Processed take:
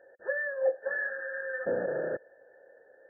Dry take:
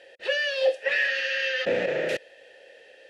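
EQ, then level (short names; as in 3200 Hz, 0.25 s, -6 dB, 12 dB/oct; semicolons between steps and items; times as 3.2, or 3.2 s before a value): brick-wall FIR low-pass 1800 Hz; -4.5 dB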